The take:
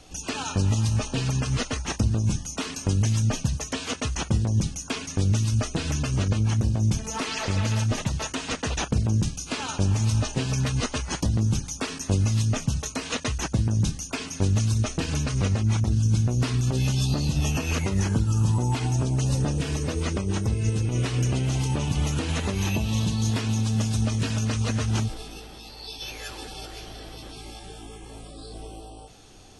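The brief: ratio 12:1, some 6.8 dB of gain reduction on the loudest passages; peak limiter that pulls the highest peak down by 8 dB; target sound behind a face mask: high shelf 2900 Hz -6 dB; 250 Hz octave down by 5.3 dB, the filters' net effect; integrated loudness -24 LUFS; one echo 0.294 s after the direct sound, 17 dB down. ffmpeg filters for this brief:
-af "equalizer=f=250:t=o:g=-7.5,acompressor=threshold=-26dB:ratio=12,alimiter=level_in=1.5dB:limit=-24dB:level=0:latency=1,volume=-1.5dB,highshelf=f=2.9k:g=-6,aecho=1:1:294:0.141,volume=11dB"

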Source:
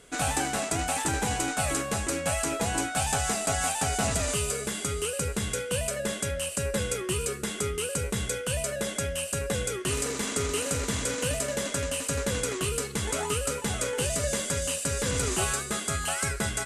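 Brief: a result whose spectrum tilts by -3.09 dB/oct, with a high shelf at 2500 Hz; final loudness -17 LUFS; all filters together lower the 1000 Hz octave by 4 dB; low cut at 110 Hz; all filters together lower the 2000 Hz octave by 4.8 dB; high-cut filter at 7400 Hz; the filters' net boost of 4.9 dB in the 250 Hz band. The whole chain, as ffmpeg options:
-af "highpass=110,lowpass=7.4k,equalizer=f=250:t=o:g=7,equalizer=f=1k:t=o:g=-5.5,equalizer=f=2k:t=o:g=-8,highshelf=f=2.5k:g=6,volume=11dB"

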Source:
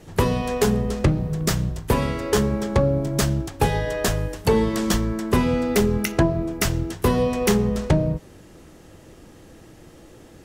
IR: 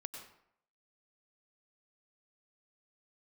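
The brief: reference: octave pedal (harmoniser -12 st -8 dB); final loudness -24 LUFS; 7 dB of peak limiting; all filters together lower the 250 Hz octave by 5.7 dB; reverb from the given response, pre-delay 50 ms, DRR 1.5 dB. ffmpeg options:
-filter_complex "[0:a]equalizer=f=250:t=o:g=-8,alimiter=limit=-15.5dB:level=0:latency=1,asplit=2[a][b];[1:a]atrim=start_sample=2205,adelay=50[c];[b][c]afir=irnorm=-1:irlink=0,volume=1dB[d];[a][d]amix=inputs=2:normalize=0,asplit=2[e][f];[f]asetrate=22050,aresample=44100,atempo=2,volume=-8dB[g];[e][g]amix=inputs=2:normalize=0,volume=-0.5dB"

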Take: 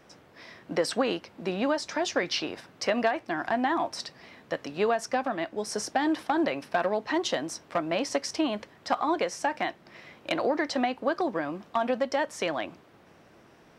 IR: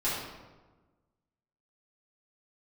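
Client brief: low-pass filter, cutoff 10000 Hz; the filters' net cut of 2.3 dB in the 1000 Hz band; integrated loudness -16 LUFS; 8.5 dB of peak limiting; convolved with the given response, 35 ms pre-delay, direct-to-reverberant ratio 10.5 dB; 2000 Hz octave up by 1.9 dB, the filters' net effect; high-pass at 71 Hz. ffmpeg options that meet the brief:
-filter_complex "[0:a]highpass=71,lowpass=10k,equalizer=f=1k:t=o:g=-4,equalizer=f=2k:t=o:g=3.5,alimiter=limit=-21.5dB:level=0:latency=1,asplit=2[a][b];[1:a]atrim=start_sample=2205,adelay=35[c];[b][c]afir=irnorm=-1:irlink=0,volume=-19.5dB[d];[a][d]amix=inputs=2:normalize=0,volume=16.5dB"

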